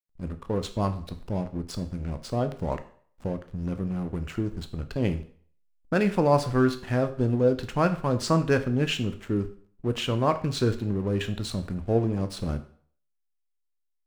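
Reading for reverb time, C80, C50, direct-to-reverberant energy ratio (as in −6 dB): 0.50 s, 17.0 dB, 14.0 dB, 8.5 dB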